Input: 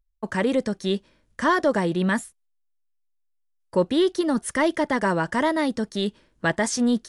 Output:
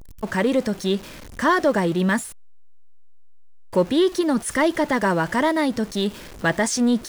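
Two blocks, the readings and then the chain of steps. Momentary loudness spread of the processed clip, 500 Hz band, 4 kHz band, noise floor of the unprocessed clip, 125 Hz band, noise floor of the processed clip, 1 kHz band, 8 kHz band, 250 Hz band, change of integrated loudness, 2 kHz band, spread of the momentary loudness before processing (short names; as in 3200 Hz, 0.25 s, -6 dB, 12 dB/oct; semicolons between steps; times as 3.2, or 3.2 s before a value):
7 LU, +2.0 dB, +2.0 dB, -71 dBFS, +2.5 dB, -40 dBFS, +2.0 dB, +3.5 dB, +2.0 dB, +2.0 dB, +2.0 dB, 7 LU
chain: zero-crossing step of -35.5 dBFS; gain +1.5 dB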